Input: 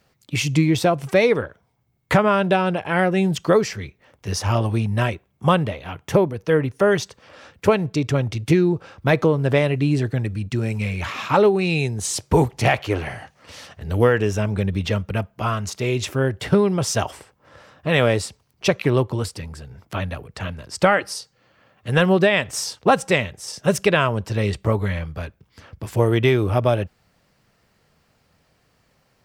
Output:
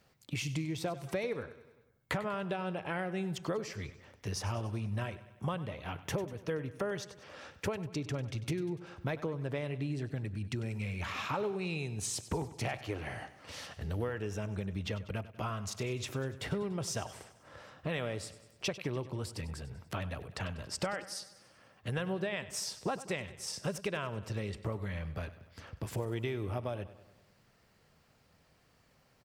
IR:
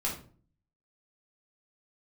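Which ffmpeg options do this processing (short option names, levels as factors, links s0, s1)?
-af "acompressor=threshold=0.0316:ratio=4,aecho=1:1:97|194|291|388|485|582:0.168|0.0957|0.0545|0.0311|0.0177|0.0101,volume=0.562"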